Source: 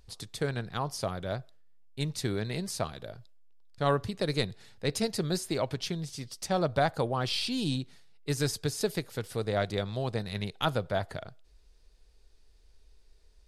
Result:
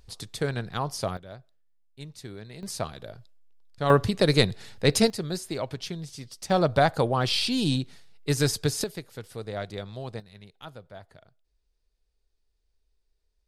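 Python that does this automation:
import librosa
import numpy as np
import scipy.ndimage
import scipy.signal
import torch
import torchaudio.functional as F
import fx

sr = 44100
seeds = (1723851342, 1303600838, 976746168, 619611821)

y = fx.gain(x, sr, db=fx.steps((0.0, 3.0), (1.17, -9.5), (2.63, 1.0), (3.9, 9.0), (5.1, -1.0), (6.5, 5.5), (8.84, -4.5), (10.2, -14.5)))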